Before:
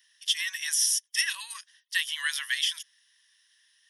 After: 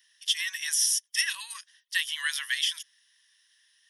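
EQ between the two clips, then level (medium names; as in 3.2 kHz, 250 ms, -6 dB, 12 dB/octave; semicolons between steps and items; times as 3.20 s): bass shelf 500 Hz -3.5 dB; 0.0 dB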